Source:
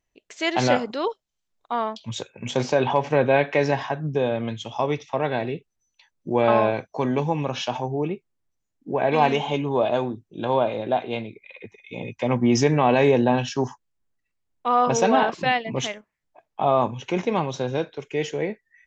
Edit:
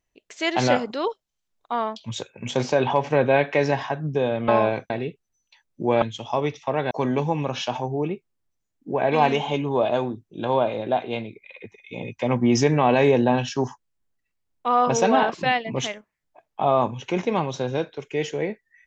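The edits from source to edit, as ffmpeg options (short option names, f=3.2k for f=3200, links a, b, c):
-filter_complex "[0:a]asplit=5[a][b][c][d][e];[a]atrim=end=4.482[f];[b]atrim=start=6.488:end=6.912[g];[c]atrim=start=5.368:end=6.492[h];[d]atrim=start=4.478:end=5.372[i];[e]atrim=start=6.908[j];[f][g]acrossfade=d=0.004:c1=hsin:c2=hsin[k];[k][h]acrossfade=d=0.004:c1=hsin:c2=hsin[l];[l][i]acrossfade=d=0.004:c1=hsin:c2=hsin[m];[m][j]acrossfade=d=0.004:c1=hsin:c2=hsin"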